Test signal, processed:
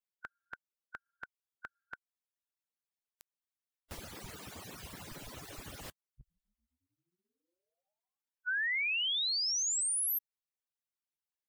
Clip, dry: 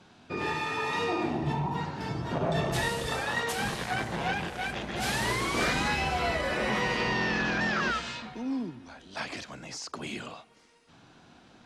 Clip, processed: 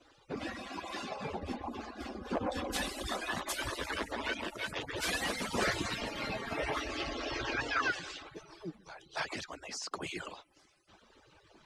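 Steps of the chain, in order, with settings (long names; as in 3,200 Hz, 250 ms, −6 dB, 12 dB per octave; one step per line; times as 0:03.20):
harmonic-percussive split with one part muted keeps percussive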